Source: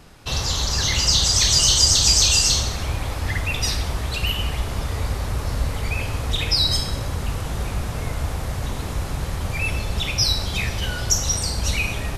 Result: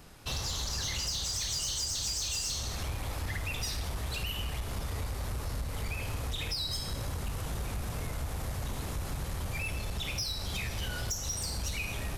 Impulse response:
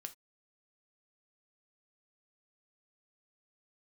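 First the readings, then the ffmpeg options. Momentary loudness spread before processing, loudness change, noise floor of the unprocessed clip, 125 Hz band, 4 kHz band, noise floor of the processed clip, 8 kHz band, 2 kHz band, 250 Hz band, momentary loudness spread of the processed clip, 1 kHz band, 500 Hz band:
14 LU, -14.0 dB, -29 dBFS, -11.5 dB, -15.0 dB, -38 dBFS, -14.5 dB, -12.0 dB, -11.0 dB, 6 LU, -11.5 dB, -11.0 dB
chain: -af "highshelf=f=11k:g=10.5,acompressor=threshold=-23dB:ratio=6,asoftclip=type=tanh:threshold=-21dB,volume=-6dB"

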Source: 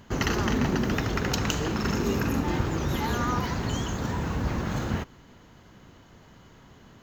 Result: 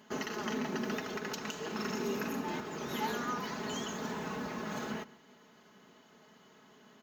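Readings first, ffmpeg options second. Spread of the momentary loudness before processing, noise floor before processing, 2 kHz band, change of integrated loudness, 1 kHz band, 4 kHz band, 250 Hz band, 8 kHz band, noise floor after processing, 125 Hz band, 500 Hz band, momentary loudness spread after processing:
5 LU, -53 dBFS, -7.5 dB, -9.5 dB, -7.0 dB, -8.0 dB, -9.5 dB, -8.0 dB, -61 dBFS, -18.5 dB, -6.5 dB, 4 LU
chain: -filter_complex "[0:a]asplit=2[a][b];[b]adelay=139.9,volume=-20dB,highshelf=f=4k:g=-3.15[c];[a][c]amix=inputs=2:normalize=0,alimiter=limit=-17.5dB:level=0:latency=1:release=378,highpass=250,bandreject=f=7.5k:w=20,aecho=1:1:4.7:0.6,volume=-6dB"

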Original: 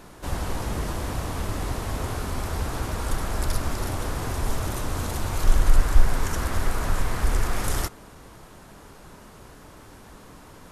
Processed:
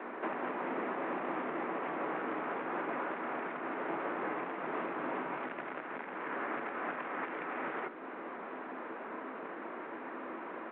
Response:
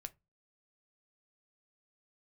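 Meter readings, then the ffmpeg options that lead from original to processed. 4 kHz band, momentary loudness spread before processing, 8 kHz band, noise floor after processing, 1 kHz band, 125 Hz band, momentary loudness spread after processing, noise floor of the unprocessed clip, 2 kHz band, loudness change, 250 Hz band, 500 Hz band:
-19.5 dB, 22 LU, under -40 dB, -44 dBFS, -3.0 dB, -29.5 dB, 7 LU, -47 dBFS, -3.5 dB, -10.0 dB, -5.5 dB, -3.0 dB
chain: -filter_complex "[0:a]bandreject=f=60:t=h:w=6,bandreject=f=120:t=h:w=6,bandreject=f=180:t=h:w=6,bandreject=f=240:t=h:w=6,bandreject=f=300:t=h:w=6,bandreject=f=360:t=h:w=6,bandreject=f=420:t=h:w=6,bandreject=f=480:t=h:w=6,bandreject=f=540:t=h:w=6,acompressor=threshold=-37dB:ratio=3,aresample=16000,acrusher=bits=3:mode=log:mix=0:aa=0.000001,aresample=44100,aecho=1:1:263|526|789:0.158|0.0491|0.0152,asplit=2[a][b];[1:a]atrim=start_sample=2205,asetrate=66150,aresample=44100[c];[b][c]afir=irnorm=-1:irlink=0,volume=9dB[d];[a][d]amix=inputs=2:normalize=0,highpass=f=200:t=q:w=0.5412,highpass=f=200:t=q:w=1.307,lowpass=f=2.3k:t=q:w=0.5176,lowpass=f=2.3k:t=q:w=0.7071,lowpass=f=2.3k:t=q:w=1.932,afreqshift=53" -ar 8000 -c:a pcm_alaw

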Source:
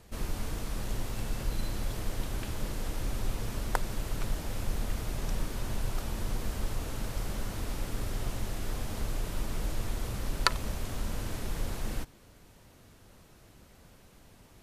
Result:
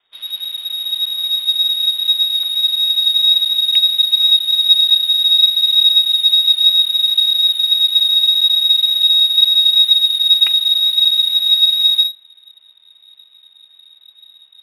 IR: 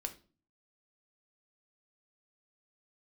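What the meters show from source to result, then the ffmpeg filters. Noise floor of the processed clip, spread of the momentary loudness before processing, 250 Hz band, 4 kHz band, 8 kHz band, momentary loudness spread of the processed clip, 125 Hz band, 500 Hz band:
-50 dBFS, 3 LU, under -20 dB, +36.0 dB, +11.0 dB, 7 LU, under -25 dB, under -15 dB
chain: -af "asubboost=boost=12:cutoff=120,lowpass=f=3.2k:t=q:w=0.5098,lowpass=f=3.2k:t=q:w=0.6013,lowpass=f=3.2k:t=q:w=0.9,lowpass=f=3.2k:t=q:w=2.563,afreqshift=-3800,adynamicsmooth=sensitivity=5.5:basefreq=2k,volume=-1.5dB"

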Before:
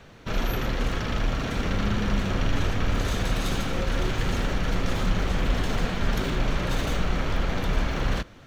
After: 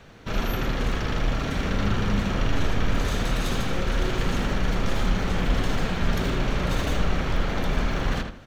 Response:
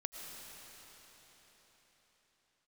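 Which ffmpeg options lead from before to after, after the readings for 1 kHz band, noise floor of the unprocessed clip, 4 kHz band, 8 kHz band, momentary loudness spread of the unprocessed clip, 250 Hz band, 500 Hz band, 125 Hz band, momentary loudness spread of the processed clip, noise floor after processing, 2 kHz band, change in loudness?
+1.0 dB, -48 dBFS, +0.5 dB, +0.5 dB, 2 LU, +1.5 dB, +1.0 dB, +1.0 dB, 2 LU, -37 dBFS, +1.0 dB, +1.0 dB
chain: -filter_complex "[0:a]asplit=2[a][b];[b]adelay=79,lowpass=f=2.9k:p=1,volume=-5dB,asplit=2[c][d];[d]adelay=79,lowpass=f=2.9k:p=1,volume=0.29,asplit=2[e][f];[f]adelay=79,lowpass=f=2.9k:p=1,volume=0.29,asplit=2[g][h];[h]adelay=79,lowpass=f=2.9k:p=1,volume=0.29[i];[a][c][e][g][i]amix=inputs=5:normalize=0"

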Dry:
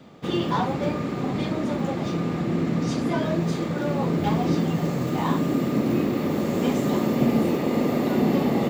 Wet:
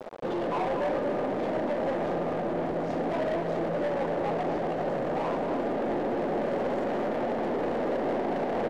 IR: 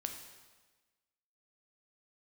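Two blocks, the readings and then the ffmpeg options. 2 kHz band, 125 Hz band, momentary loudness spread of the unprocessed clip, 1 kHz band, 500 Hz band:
-3.0 dB, -14.0 dB, 5 LU, -1.0 dB, 0.0 dB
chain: -filter_complex "[0:a]areverse,acompressor=mode=upward:threshold=-36dB:ratio=2.5,areverse,acrusher=bits=6:mix=0:aa=0.000001,apsyclip=13.5dB,asoftclip=type=hard:threshold=-15dB,acrusher=bits=3:mode=log:mix=0:aa=0.000001,bandpass=f=590:t=q:w=2:csg=0,asoftclip=type=tanh:threshold=-24.5dB,aeval=exprs='0.0596*(cos(1*acos(clip(val(0)/0.0596,-1,1)))-cos(1*PI/2))+0.00168*(cos(2*acos(clip(val(0)/0.0596,-1,1)))-cos(2*PI/2))+0.0015*(cos(6*acos(clip(val(0)/0.0596,-1,1)))-cos(6*PI/2))':c=same,asplit=2[a][b];[b]adelay=239.1,volume=-6dB,highshelf=f=4k:g=-5.38[c];[a][c]amix=inputs=2:normalize=0,volume=-1dB"

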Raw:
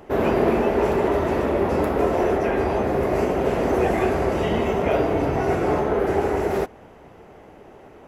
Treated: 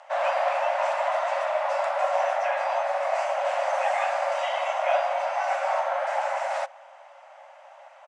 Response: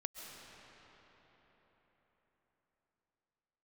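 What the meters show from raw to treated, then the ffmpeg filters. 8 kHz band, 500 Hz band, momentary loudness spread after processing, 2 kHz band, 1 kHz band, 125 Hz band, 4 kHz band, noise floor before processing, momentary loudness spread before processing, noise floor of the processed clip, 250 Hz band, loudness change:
n/a, -6.0 dB, 2 LU, 0.0 dB, +1.5 dB, under -40 dB, +0.5 dB, -47 dBFS, 2 LU, -50 dBFS, under -40 dB, -4.0 dB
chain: -filter_complex "[0:a]asplit=2[a][b];[b]adelay=1224,volume=-28dB,highshelf=f=4k:g=-27.6[c];[a][c]amix=inputs=2:normalize=0,afreqshift=42,afftfilt=real='re*between(b*sr/4096,530,10000)':imag='im*between(b*sr/4096,530,10000)':win_size=4096:overlap=0.75"

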